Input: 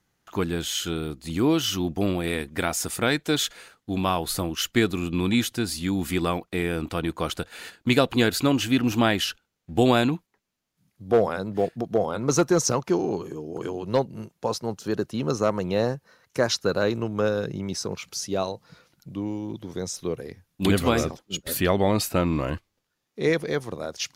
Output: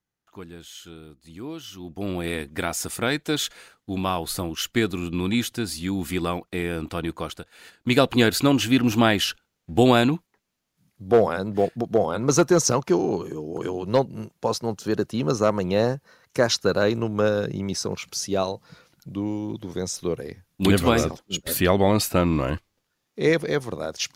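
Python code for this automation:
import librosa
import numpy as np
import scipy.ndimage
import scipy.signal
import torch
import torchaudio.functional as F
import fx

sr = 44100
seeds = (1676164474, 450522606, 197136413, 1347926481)

y = fx.gain(x, sr, db=fx.line((1.75, -14.0), (2.19, -1.0), (7.15, -1.0), (7.51, -10.5), (8.02, 2.5)))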